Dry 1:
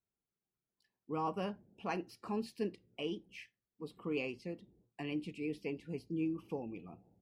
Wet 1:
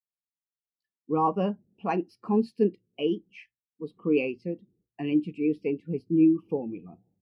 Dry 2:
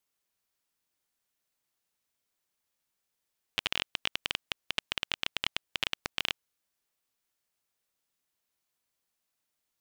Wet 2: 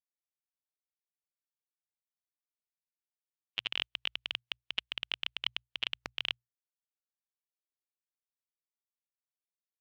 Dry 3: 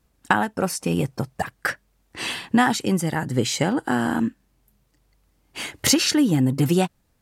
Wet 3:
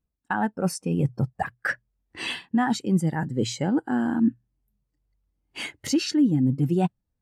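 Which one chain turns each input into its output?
hum notches 60/120 Hz; reverse; compression 6:1, threshold -27 dBFS; reverse; spectral contrast expander 1.5:1; peak normalisation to -12 dBFS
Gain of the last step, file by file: +13.0 dB, -1.0 dB, +4.0 dB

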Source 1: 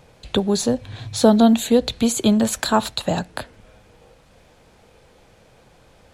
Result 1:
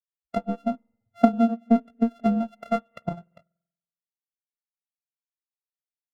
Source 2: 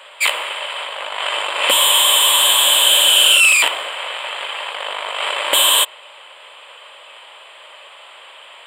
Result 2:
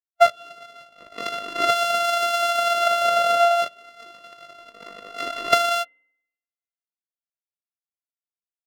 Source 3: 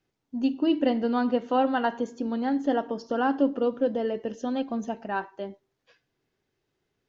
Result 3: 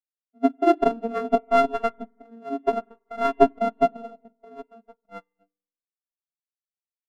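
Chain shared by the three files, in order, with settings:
sorted samples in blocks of 64 samples; compression 10:1, threshold -18 dBFS; power-law waveshaper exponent 2; spring tank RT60 2.1 s, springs 47 ms, chirp 65 ms, DRR 12 dB; spectral contrast expander 2.5:1; peak normalisation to -1.5 dBFS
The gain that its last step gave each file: +5.0 dB, +4.5 dB, +10.5 dB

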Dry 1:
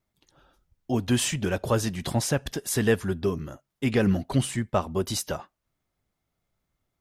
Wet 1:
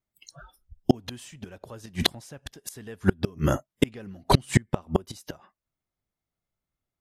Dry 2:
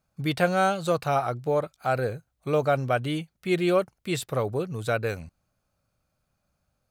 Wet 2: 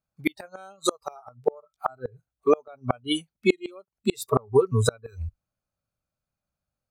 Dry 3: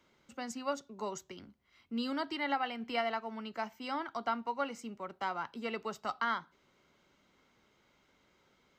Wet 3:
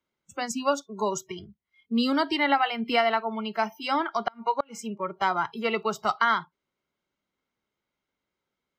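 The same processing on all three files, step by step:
spectral noise reduction 27 dB; in parallel at -1 dB: compression 16:1, threshold -31 dBFS; on the sum: inverted gate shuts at -17 dBFS, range -33 dB; normalise loudness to -27 LUFS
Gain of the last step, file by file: +12.5 dB, +9.5 dB, +6.5 dB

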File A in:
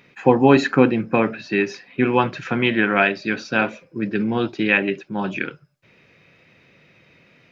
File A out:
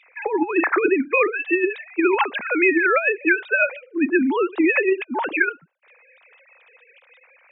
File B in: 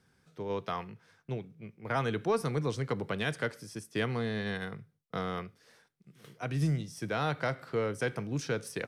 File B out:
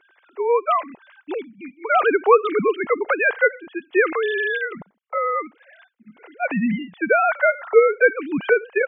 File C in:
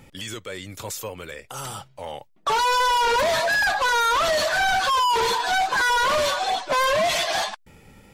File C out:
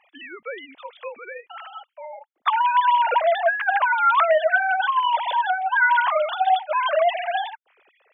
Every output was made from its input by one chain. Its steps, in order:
formants replaced by sine waves; bass shelf 340 Hz -10 dB; compressor with a negative ratio -21 dBFS, ratio -0.5; normalise loudness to -20 LUFS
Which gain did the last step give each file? +4.5 dB, +16.5 dB, +4.5 dB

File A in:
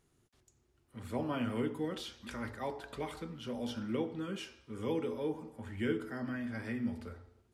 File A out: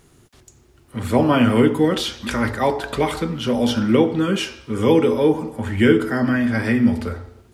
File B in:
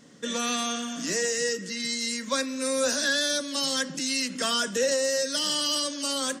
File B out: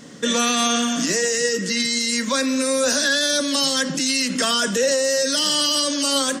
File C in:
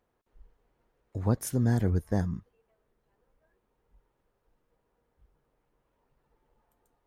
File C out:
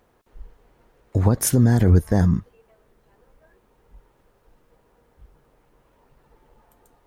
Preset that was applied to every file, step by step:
peak limiter -22.5 dBFS; normalise loudness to -19 LUFS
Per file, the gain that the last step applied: +19.5 dB, +11.5 dB, +14.5 dB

